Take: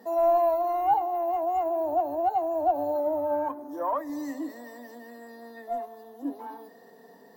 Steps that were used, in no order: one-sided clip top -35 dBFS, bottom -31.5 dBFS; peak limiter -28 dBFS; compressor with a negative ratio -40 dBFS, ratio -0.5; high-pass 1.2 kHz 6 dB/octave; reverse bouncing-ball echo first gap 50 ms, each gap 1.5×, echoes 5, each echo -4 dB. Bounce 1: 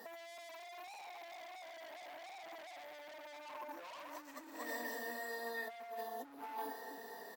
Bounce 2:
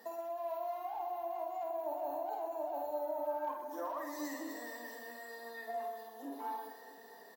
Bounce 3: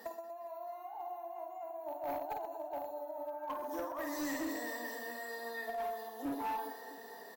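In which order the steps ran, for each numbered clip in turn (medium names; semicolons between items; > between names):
reverse bouncing-ball echo > one-sided clip > compressor with a negative ratio > high-pass > peak limiter; peak limiter > high-pass > one-sided clip > compressor with a negative ratio > reverse bouncing-ball echo; high-pass > peak limiter > compressor with a negative ratio > reverse bouncing-ball echo > one-sided clip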